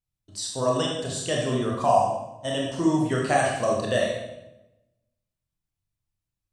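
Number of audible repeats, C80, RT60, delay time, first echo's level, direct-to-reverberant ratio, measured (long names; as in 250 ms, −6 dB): no echo audible, 4.5 dB, 0.95 s, no echo audible, no echo audible, −2.5 dB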